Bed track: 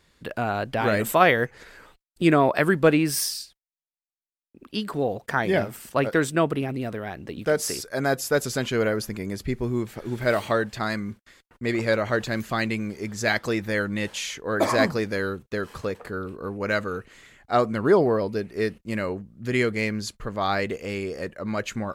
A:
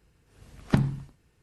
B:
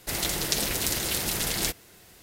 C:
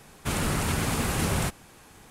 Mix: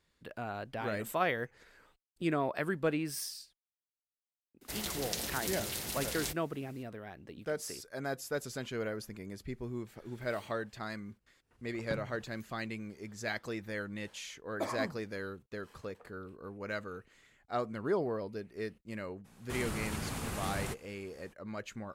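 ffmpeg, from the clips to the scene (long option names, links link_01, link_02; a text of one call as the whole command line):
ffmpeg -i bed.wav -i cue0.wav -i cue1.wav -i cue2.wav -filter_complex "[0:a]volume=-13.5dB[link_01];[2:a]afreqshift=15,atrim=end=2.22,asetpts=PTS-STARTPTS,volume=-10.5dB,afade=type=in:duration=0.004:curve=hsin,afade=type=out:start_time=2.216:duration=0.004:curve=hsin,adelay=203301S[link_02];[1:a]atrim=end=1.42,asetpts=PTS-STARTPTS,volume=-18dB,afade=type=in:duration=0.05,afade=type=out:start_time=1.37:duration=0.05,adelay=11170[link_03];[3:a]atrim=end=2.1,asetpts=PTS-STARTPTS,volume=-11.5dB,afade=type=in:duration=0.02,afade=type=out:start_time=2.08:duration=0.02,adelay=848484S[link_04];[link_01][link_02][link_03][link_04]amix=inputs=4:normalize=0" out.wav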